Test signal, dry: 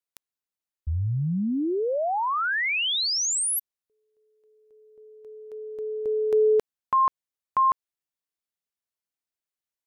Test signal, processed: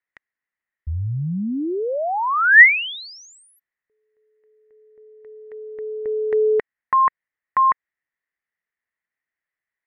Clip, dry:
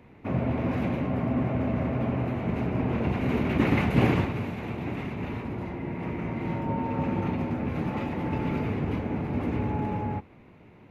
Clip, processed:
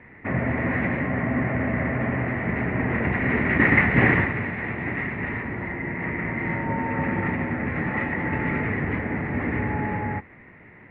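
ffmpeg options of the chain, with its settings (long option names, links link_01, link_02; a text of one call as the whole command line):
ffmpeg -i in.wav -af "lowpass=frequency=1900:width_type=q:width=9.5,volume=1.5dB" out.wav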